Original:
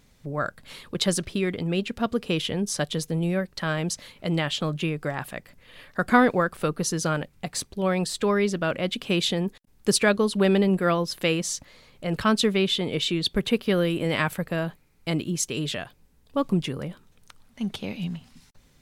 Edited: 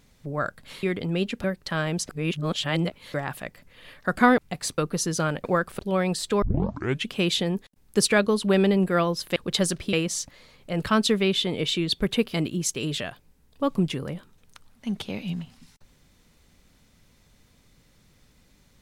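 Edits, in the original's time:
0:00.83–0:01.40: move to 0:11.27
0:02.01–0:03.35: remove
0:04.00–0:05.05: reverse
0:06.29–0:06.64: swap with 0:07.30–0:07.70
0:08.33: tape start 0.68 s
0:13.68–0:15.08: remove

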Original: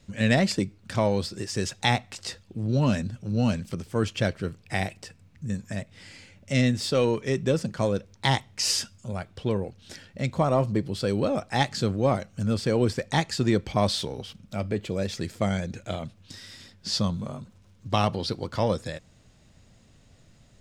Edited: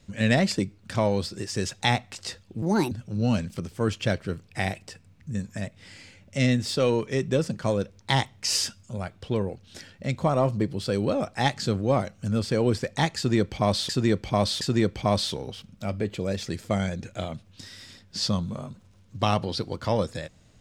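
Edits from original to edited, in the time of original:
0:02.62–0:03.06: play speed 151%
0:13.32–0:14.04: repeat, 3 plays

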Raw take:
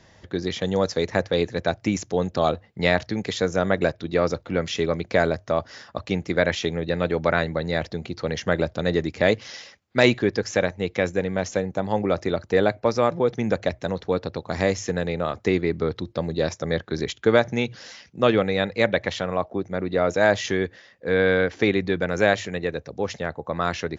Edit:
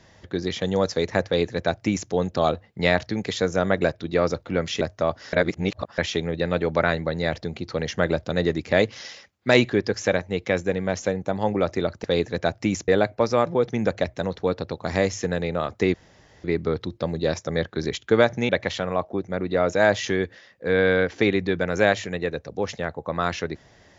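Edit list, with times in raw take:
0:01.26–0:02.10: duplicate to 0:12.53
0:04.81–0:05.30: remove
0:05.82–0:06.47: reverse
0:15.59: splice in room tone 0.50 s
0:17.64–0:18.90: remove

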